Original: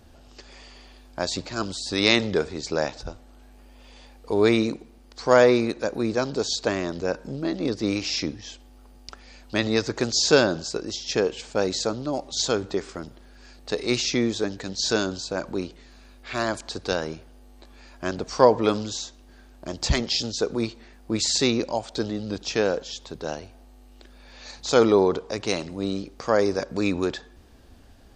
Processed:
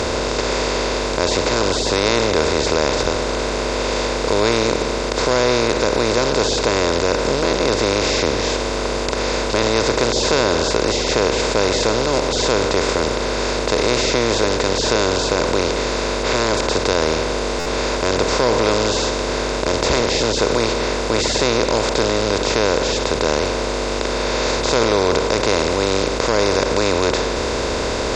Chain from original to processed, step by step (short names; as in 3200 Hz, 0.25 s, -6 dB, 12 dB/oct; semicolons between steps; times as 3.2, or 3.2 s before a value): per-bin compression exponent 0.2; in parallel at -3 dB: limiter -2 dBFS, peak gain reduction 7.5 dB; on the sum: stuck buffer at 17.59, samples 512, times 5; gain -9.5 dB